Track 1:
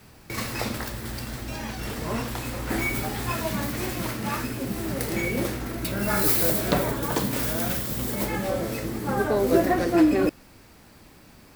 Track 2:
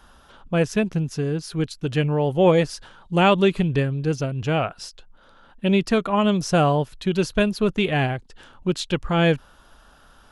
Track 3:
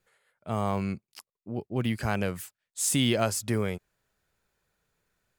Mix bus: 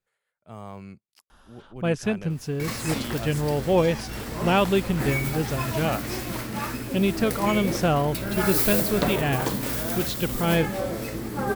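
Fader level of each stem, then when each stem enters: -1.5, -4.0, -11.0 dB; 2.30, 1.30, 0.00 s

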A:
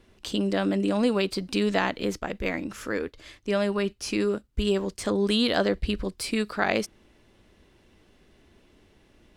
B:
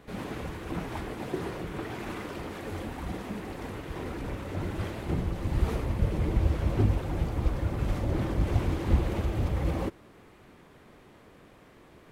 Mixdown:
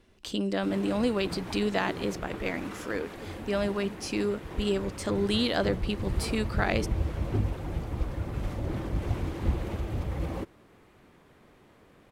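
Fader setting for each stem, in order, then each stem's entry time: -3.5, -3.5 dB; 0.00, 0.55 s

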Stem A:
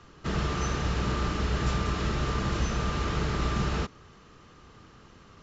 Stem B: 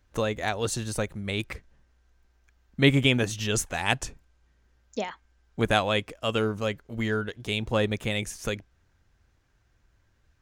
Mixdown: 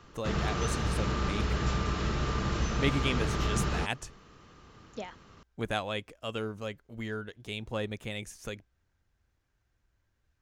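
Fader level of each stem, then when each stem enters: -2.0, -9.0 dB; 0.00, 0.00 s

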